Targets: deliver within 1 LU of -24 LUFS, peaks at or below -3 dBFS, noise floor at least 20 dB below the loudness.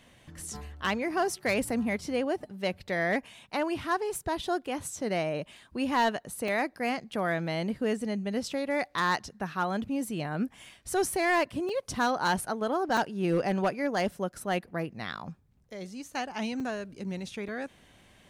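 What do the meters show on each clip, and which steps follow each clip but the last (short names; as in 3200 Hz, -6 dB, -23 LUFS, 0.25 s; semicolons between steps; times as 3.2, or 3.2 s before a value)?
clipped 0.5%; flat tops at -19.5 dBFS; dropouts 7; longest dropout 3.3 ms; loudness -31.0 LUFS; peak -19.5 dBFS; loudness target -24.0 LUFS
-> clip repair -19.5 dBFS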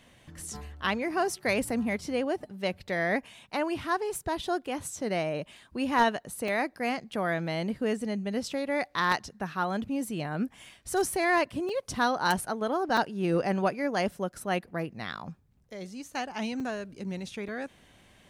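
clipped 0.0%; dropouts 7; longest dropout 3.3 ms
-> interpolate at 1.69/6.48/7.13/11.69/12.97/16.6/17.48, 3.3 ms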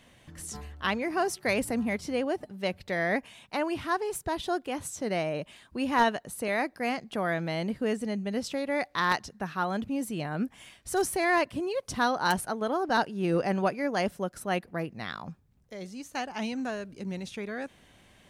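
dropouts 0; loudness -30.5 LUFS; peak -10.5 dBFS; loudness target -24.0 LUFS
-> gain +6.5 dB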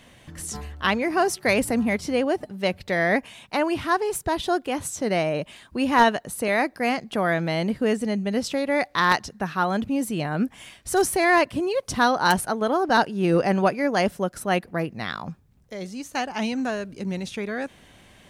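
loudness -24.0 LUFS; peak -4.0 dBFS; noise floor -54 dBFS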